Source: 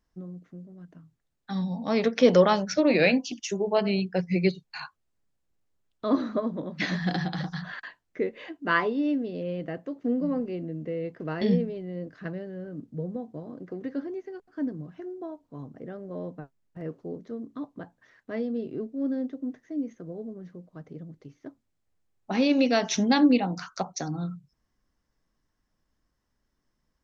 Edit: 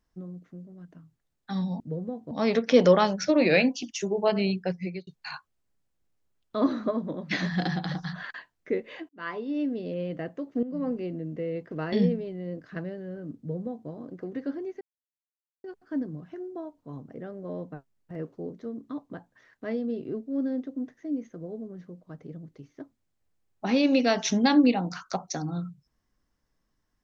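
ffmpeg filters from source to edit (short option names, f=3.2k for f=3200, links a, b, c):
-filter_complex "[0:a]asplit=7[a][b][c][d][e][f][g];[a]atrim=end=1.802[h];[b]atrim=start=12.868:end=13.382[i];[c]atrim=start=1.798:end=4.56,asetpts=PTS-STARTPTS,afade=t=out:st=2.262:d=0.5[j];[d]atrim=start=4.56:end=8.58,asetpts=PTS-STARTPTS,afade=t=in:d=0.004:c=hsin,afade=t=out:st=4.016:d=0.004:c=hsin[k];[e]atrim=start=8.58:end=10.12,asetpts=PTS-STARTPTS,afade=t=in:d=0.69,afade=t=out:st=1.536:d=0.004:c=hsin:silence=0.211349[l];[f]atrim=start=10.12:end=14.3,asetpts=PTS-STARTPTS,afade=t=in:d=0.28:silence=0.211349,afade=t=out:st=4.176:d=0.004:c=hsin,apad=pad_dur=0.83[m];[g]atrim=start=14.3,asetpts=PTS-STARTPTS,afade=t=in:d=0.004:c=hsin[n];[h][i]acrossfade=d=0.004:c1=hsin:c2=hsin[o];[j][k][l][m][n]concat=n=5:v=0:a=1[p];[o][p]acrossfade=d=0.004:c1=hsin:c2=hsin"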